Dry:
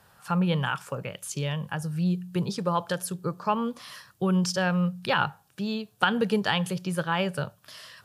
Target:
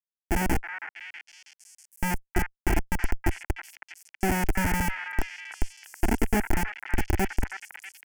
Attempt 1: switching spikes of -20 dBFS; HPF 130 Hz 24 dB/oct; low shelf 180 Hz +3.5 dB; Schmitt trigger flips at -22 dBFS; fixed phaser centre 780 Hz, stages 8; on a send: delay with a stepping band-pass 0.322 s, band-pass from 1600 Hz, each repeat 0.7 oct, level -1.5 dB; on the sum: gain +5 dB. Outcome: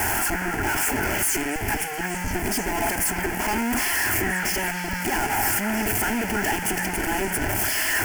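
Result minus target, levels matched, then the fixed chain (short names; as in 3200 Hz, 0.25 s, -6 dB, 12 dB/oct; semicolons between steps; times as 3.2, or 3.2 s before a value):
Schmitt trigger: distortion -29 dB; switching spikes: distortion -7 dB
switching spikes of -13 dBFS; HPF 130 Hz 24 dB/oct; low shelf 180 Hz +3.5 dB; Schmitt trigger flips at -10.5 dBFS; fixed phaser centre 780 Hz, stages 8; on a send: delay with a stepping band-pass 0.322 s, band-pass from 1600 Hz, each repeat 0.7 oct, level -1.5 dB; on the sum: gain +5 dB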